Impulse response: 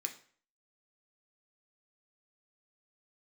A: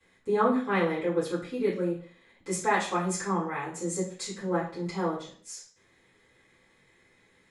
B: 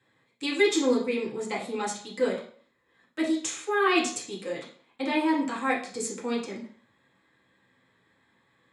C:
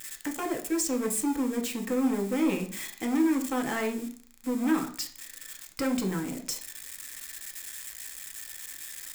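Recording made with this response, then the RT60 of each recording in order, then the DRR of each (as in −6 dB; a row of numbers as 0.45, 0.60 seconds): C; 0.50, 0.50, 0.50 seconds; −15.5, −5.5, 3.5 decibels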